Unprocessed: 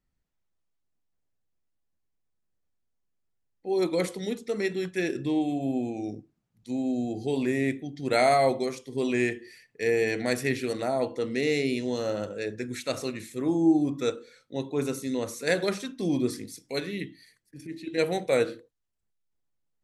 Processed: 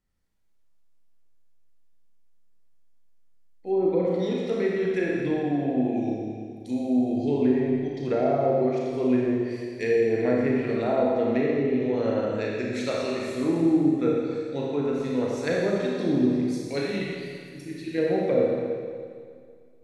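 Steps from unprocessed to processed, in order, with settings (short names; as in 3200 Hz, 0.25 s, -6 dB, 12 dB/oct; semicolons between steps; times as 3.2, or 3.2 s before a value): treble ducked by the level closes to 490 Hz, closed at -20.5 dBFS; Schroeder reverb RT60 2.1 s, combs from 28 ms, DRR -3.5 dB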